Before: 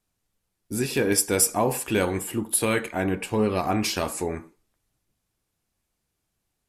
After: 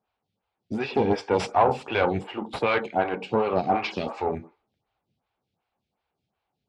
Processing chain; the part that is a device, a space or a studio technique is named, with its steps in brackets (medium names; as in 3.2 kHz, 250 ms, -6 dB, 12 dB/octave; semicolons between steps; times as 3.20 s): 2.32–4.18 s: high-pass 160 Hz 12 dB/octave; vibe pedal into a guitar amplifier (lamp-driven phase shifter 2.7 Hz; valve stage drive 18 dB, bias 0.6; cabinet simulation 79–4000 Hz, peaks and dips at 310 Hz -6 dB, 810 Hz +7 dB, 1.8 kHz -5 dB); trim +7.5 dB